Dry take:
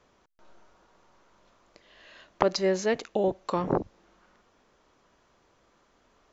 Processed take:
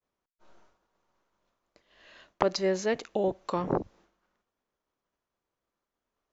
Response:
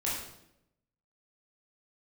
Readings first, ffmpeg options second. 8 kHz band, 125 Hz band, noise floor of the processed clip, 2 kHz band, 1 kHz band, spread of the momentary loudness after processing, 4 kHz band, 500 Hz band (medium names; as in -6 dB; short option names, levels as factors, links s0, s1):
no reading, -2.0 dB, under -85 dBFS, -2.0 dB, -2.0 dB, 6 LU, -2.0 dB, -2.0 dB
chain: -af "agate=range=0.0224:threshold=0.00251:ratio=3:detection=peak,volume=0.794"